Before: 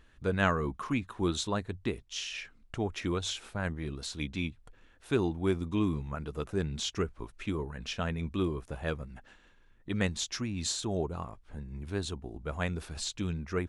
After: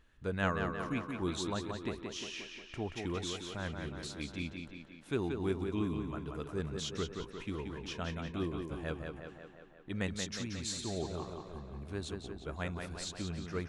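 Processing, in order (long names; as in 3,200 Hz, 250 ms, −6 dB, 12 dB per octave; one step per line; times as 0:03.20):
tape delay 178 ms, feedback 67%, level −4 dB, low-pass 5,000 Hz
level −6 dB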